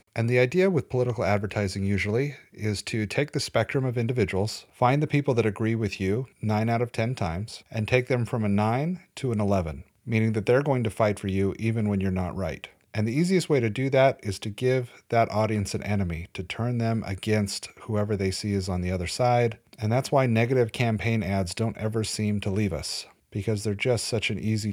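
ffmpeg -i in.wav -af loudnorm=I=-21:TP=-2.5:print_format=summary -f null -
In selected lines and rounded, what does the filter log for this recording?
Input Integrated:    -26.4 LUFS
Input True Peak:      -5.5 dBTP
Input LRA:             2.5 LU
Input Threshold:     -36.4 LUFS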